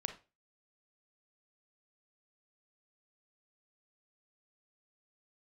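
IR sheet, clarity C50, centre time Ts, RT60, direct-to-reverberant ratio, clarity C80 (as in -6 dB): 11.0 dB, 10 ms, 0.30 s, 7.0 dB, 17.0 dB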